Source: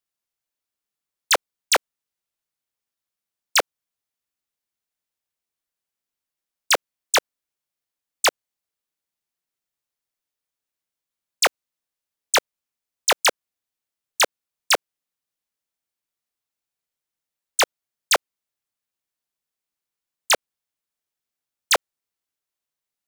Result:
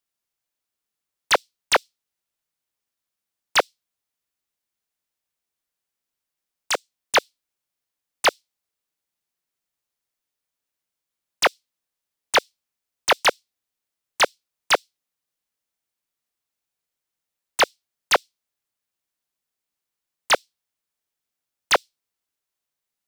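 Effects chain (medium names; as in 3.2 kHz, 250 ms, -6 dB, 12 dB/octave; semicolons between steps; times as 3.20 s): 6.71–7.15 s: level held to a coarse grid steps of 11 dB; on a send at -22 dB: inverse Chebyshev high-pass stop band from 1.2 kHz, stop band 60 dB + reverberation RT60 0.40 s, pre-delay 3 ms; on the sum: slew-rate limiter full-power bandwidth 490 Hz; trim +2 dB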